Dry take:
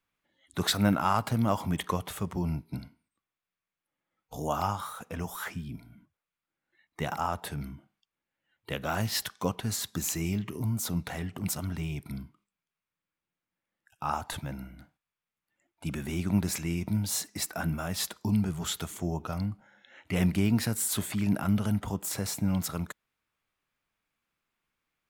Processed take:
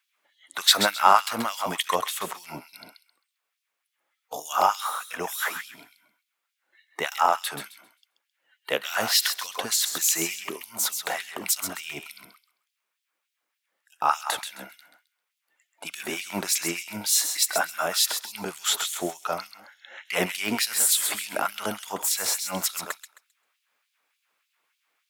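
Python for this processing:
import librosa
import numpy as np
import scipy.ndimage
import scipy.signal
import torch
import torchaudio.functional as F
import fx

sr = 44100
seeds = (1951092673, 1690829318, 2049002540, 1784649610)

y = fx.echo_thinned(x, sr, ms=132, feedback_pct=25, hz=1000.0, wet_db=-7.0)
y = fx.filter_lfo_highpass(y, sr, shape='sine', hz=3.4, low_hz=430.0, high_hz=3700.0, q=1.2)
y = F.gain(torch.from_numpy(y), 9.0).numpy()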